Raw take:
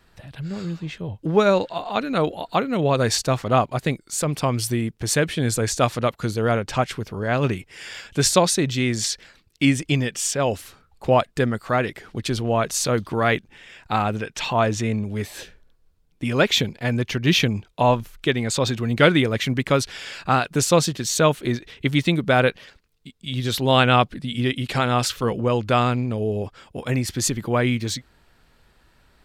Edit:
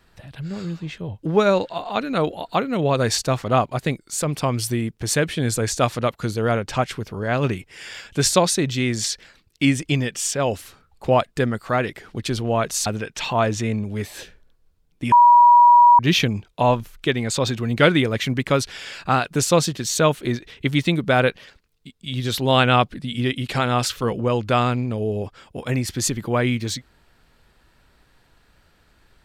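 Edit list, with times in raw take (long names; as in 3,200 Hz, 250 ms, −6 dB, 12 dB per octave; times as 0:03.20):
0:12.86–0:14.06: remove
0:16.32–0:17.19: beep over 963 Hz −7.5 dBFS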